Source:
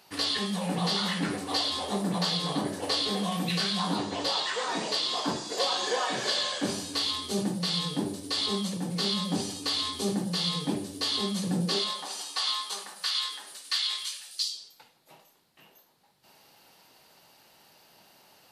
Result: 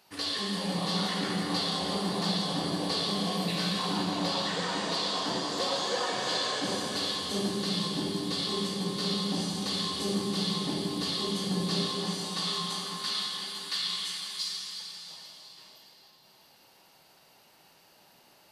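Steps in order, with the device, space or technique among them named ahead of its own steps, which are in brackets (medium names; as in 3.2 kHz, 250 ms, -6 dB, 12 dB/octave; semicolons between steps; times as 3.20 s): cathedral (reverberation RT60 5.0 s, pre-delay 38 ms, DRR -1.5 dB); trim -5 dB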